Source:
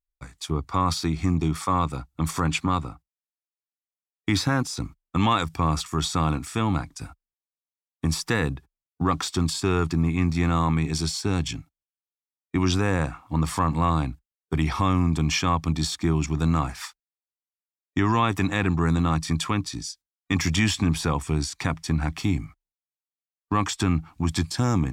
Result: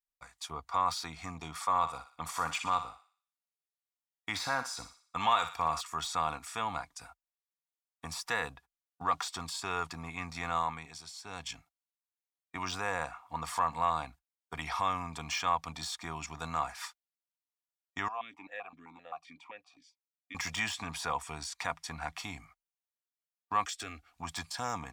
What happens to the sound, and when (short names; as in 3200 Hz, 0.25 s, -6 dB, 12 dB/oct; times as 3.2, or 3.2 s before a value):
1.69–5.81 thinning echo 60 ms, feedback 48%, high-pass 880 Hz, level -9 dB
10.56–11.58 dip -11 dB, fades 0.43 s
18.08–20.35 vowel sequencer 7.7 Hz
23.65–24.14 fixed phaser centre 390 Hz, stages 4
whole clip: de-esser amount 60%; resonant low shelf 470 Hz -14 dB, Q 1.5; comb 4.2 ms, depth 31%; gain -6.5 dB